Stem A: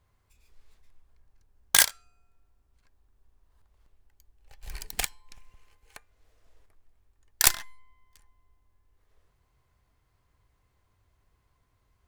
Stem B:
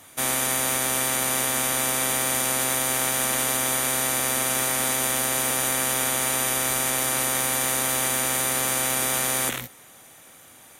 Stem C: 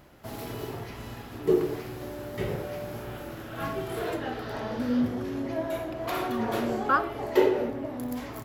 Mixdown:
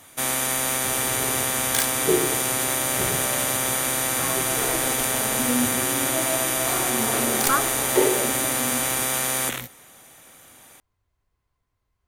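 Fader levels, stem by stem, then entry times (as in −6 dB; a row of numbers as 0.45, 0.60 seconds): −6.0, 0.0, +1.0 decibels; 0.00, 0.00, 0.60 seconds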